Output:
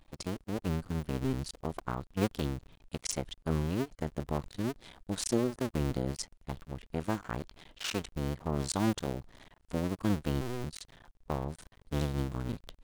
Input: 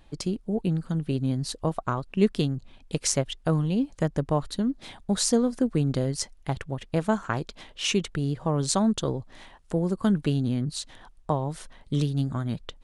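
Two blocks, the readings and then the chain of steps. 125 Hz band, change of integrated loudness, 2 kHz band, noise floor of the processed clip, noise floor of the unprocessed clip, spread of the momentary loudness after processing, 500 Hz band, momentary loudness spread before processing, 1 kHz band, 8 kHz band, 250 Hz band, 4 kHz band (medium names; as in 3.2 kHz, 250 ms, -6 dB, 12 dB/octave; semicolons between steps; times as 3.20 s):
-8.0 dB, -8.0 dB, -5.5 dB, -67 dBFS, -55 dBFS, 11 LU, -8.0 dB, 9 LU, -7.0 dB, -9.5 dB, -8.5 dB, -9.0 dB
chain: cycle switcher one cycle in 2, muted; harmonic-percussive split harmonic +5 dB; trim -7.5 dB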